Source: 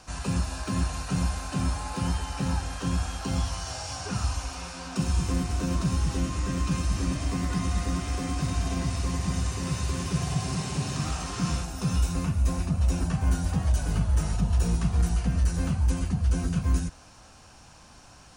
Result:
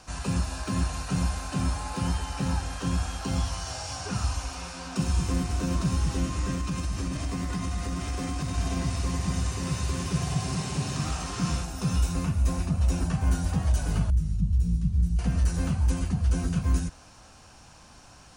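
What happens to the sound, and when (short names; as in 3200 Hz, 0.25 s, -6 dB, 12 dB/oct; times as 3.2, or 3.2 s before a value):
6.55–8.58 compressor 4:1, threshold -26 dBFS
14.1–15.19 EQ curve 170 Hz 0 dB, 750 Hz -28 dB, 4000 Hz -14 dB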